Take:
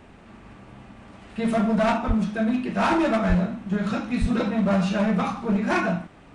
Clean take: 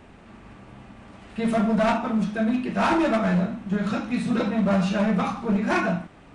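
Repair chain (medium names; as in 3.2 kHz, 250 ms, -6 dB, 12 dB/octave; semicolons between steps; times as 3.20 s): de-plosive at 2.07/3.28/4.20 s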